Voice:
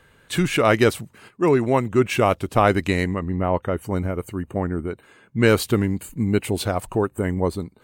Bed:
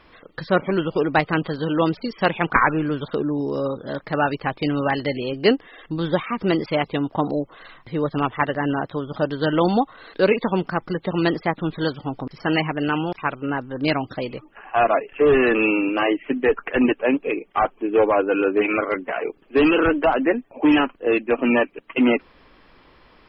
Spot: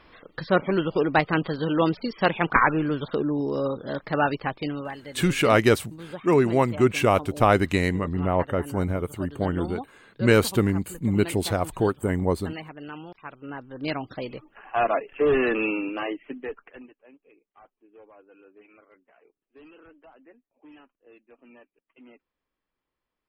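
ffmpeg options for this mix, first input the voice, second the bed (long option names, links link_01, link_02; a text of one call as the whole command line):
ffmpeg -i stem1.wav -i stem2.wav -filter_complex "[0:a]adelay=4850,volume=-1.5dB[link_01];[1:a]volume=9.5dB,afade=type=out:start_time=4.32:duration=0.64:silence=0.188365,afade=type=in:start_time=13.25:duration=1.08:silence=0.266073,afade=type=out:start_time=15.39:duration=1.49:silence=0.0354813[link_02];[link_01][link_02]amix=inputs=2:normalize=0" out.wav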